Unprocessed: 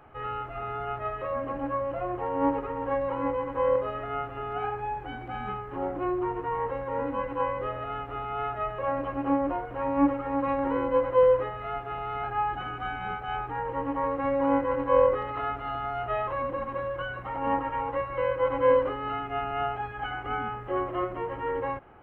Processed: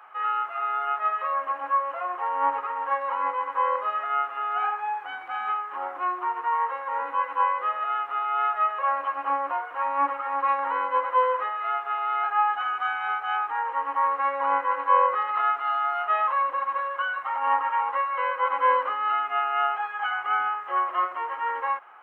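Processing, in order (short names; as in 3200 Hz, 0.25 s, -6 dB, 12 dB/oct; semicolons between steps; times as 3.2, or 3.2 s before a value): resonant high-pass 1100 Hz, resonance Q 2; gain +3.5 dB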